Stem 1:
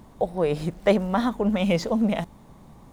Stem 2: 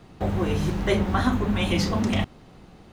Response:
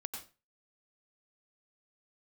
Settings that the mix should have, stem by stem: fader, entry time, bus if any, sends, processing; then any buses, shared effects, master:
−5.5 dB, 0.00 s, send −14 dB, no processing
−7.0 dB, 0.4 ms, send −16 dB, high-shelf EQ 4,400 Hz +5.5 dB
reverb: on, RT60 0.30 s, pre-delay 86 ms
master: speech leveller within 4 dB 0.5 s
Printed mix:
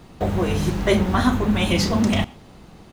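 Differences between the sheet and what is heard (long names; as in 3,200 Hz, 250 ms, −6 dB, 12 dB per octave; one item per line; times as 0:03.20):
stem 2 −7.0 dB → +1.5 dB
master: missing speech leveller within 4 dB 0.5 s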